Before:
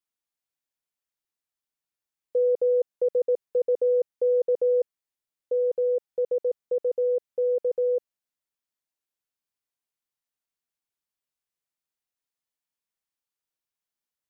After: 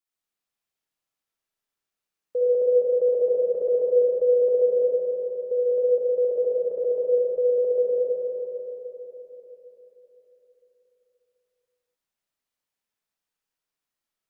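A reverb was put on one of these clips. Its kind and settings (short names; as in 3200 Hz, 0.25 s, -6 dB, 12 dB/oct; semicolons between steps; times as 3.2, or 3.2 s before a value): digital reverb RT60 4 s, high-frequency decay 0.6×, pre-delay 20 ms, DRR -7 dB; gain -2.5 dB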